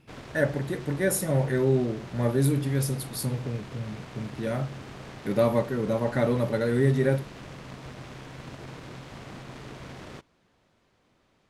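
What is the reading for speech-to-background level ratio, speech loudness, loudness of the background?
16.0 dB, -27.0 LUFS, -43.0 LUFS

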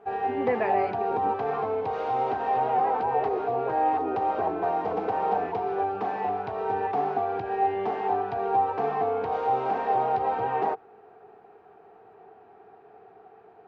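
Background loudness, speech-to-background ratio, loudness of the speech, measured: -27.0 LUFS, -5.0 dB, -32.0 LUFS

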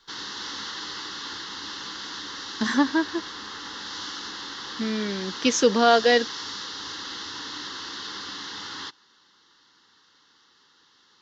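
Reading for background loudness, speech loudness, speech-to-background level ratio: -33.5 LUFS, -22.5 LUFS, 11.0 dB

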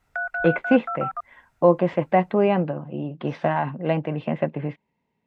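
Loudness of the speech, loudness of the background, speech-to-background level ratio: -23.5 LUFS, -29.0 LUFS, 5.5 dB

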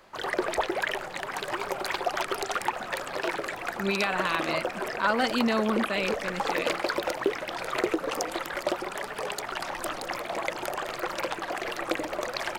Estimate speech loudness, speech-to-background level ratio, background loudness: -29.0 LUFS, 2.0 dB, -31.0 LUFS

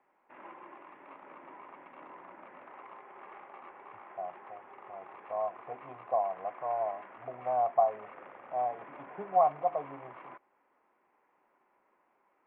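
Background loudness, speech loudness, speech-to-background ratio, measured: -50.5 LUFS, -32.5 LUFS, 18.0 dB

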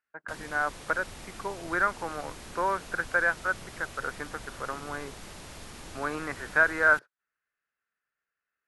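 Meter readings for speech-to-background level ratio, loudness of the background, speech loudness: 15.5 dB, -44.5 LUFS, -29.0 LUFS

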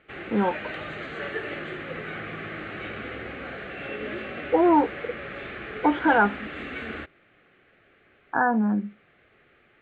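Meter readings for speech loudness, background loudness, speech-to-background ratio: -23.5 LUFS, -35.0 LUFS, 11.5 dB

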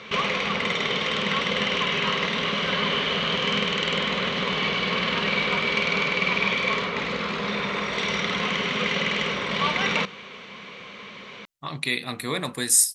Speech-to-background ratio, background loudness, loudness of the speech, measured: -0.5 dB, -23.5 LUFS, -24.0 LUFS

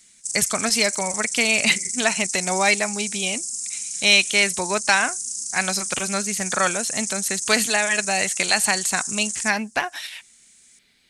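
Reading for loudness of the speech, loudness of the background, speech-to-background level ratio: -21.5 LUFS, -26.0 LUFS, 4.5 dB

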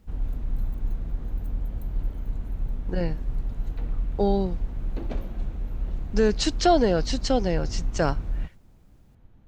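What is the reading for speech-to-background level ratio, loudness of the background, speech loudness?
8.0 dB, -33.5 LUFS, -25.5 LUFS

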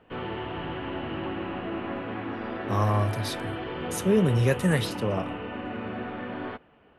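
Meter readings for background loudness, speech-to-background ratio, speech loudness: -34.0 LUFS, 8.0 dB, -26.0 LUFS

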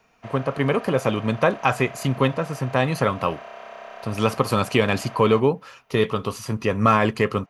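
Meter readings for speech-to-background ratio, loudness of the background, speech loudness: 17.5 dB, -40.0 LUFS, -22.5 LUFS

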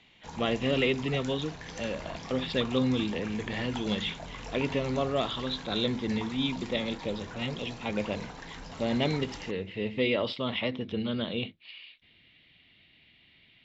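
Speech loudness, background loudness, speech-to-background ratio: -31.5 LUFS, -43.0 LUFS, 11.5 dB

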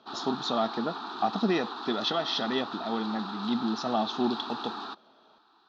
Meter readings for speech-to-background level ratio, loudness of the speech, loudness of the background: 6.5 dB, -31.0 LUFS, -37.5 LUFS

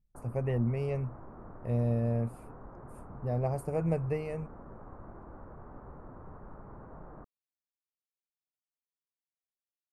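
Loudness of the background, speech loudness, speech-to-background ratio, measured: -50.0 LUFS, -33.0 LUFS, 17.0 dB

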